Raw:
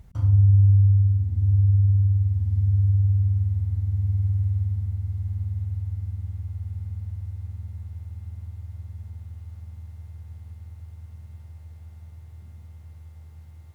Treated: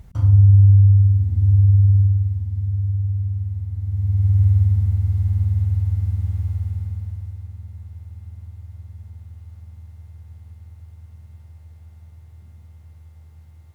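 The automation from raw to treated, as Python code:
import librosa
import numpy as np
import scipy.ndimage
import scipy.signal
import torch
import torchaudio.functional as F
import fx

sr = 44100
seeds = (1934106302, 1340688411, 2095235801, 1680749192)

y = fx.gain(x, sr, db=fx.line((2.0, 5.0), (2.5, -2.0), (3.73, -2.0), (4.43, 9.0), (6.49, 9.0), (7.5, -0.5)))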